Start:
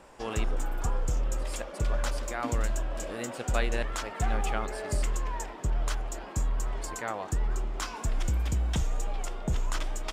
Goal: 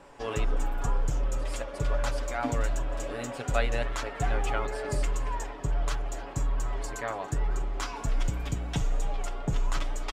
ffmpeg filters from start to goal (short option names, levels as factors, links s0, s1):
-af "highshelf=f=6800:g=-7.5,aecho=1:1:7.1:0.65,aecho=1:1:284:0.112"